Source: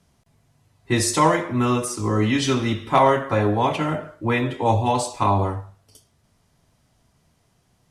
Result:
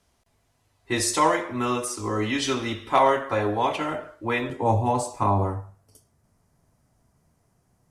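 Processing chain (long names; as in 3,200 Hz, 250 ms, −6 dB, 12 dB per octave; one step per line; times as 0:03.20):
parametric band 150 Hz −12 dB 1.2 octaves, from 0:04.50 3,400 Hz
level −2 dB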